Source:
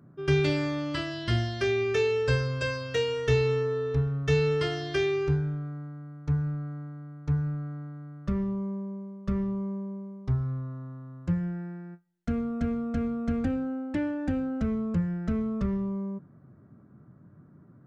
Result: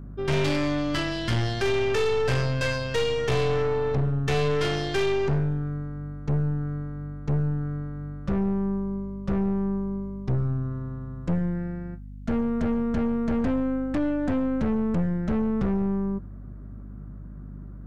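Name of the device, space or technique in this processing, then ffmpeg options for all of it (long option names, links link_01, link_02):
valve amplifier with mains hum: -af "aeval=exprs='(tanh(31.6*val(0)+0.55)-tanh(0.55))/31.6':channel_layout=same,aeval=exprs='val(0)+0.00447*(sin(2*PI*50*n/s)+sin(2*PI*2*50*n/s)/2+sin(2*PI*3*50*n/s)/3+sin(2*PI*4*50*n/s)/4+sin(2*PI*5*50*n/s)/5)':channel_layout=same,volume=8.5dB"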